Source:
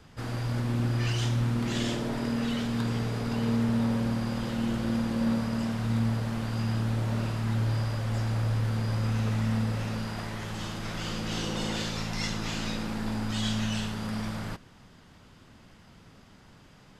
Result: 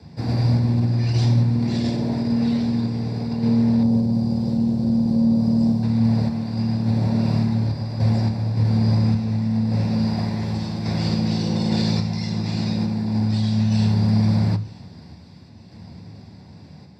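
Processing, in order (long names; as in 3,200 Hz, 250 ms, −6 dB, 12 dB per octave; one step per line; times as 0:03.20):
0:03.83–0:05.83: parametric band 2,000 Hz −14.5 dB 1.9 octaves
brickwall limiter −23 dBFS, peak gain reduction 6.5 dB
sample-and-hold tremolo
delay with a high-pass on its return 932 ms, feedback 50%, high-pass 1,600 Hz, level −21.5 dB
convolution reverb RT60 0.35 s, pre-delay 3 ms, DRR 10 dB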